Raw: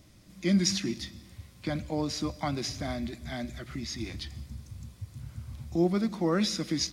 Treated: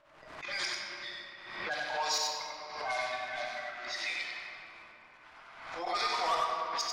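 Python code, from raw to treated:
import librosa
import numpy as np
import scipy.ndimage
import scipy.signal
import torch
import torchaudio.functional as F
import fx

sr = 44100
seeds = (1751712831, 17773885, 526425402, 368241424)

p1 = fx.spec_quant(x, sr, step_db=30)
p2 = scipy.signal.sosfilt(scipy.signal.butter(4, 850.0, 'highpass', fs=sr, output='sos'), p1)
p3 = fx.gate_flip(p2, sr, shuts_db=-25.0, range_db=-28)
p4 = fx.leveller(p3, sr, passes=3)
p5 = fx.auto_swell(p4, sr, attack_ms=103.0)
p6 = fx.env_lowpass(p5, sr, base_hz=1300.0, full_db=-26.5)
p7 = p6 + fx.echo_single(p6, sr, ms=94, db=-3.5, dry=0)
p8 = fx.room_shoebox(p7, sr, seeds[0], volume_m3=140.0, walls='hard', distance_m=0.48)
p9 = fx.pre_swell(p8, sr, db_per_s=57.0)
y = p9 * librosa.db_to_amplitude(-2.5)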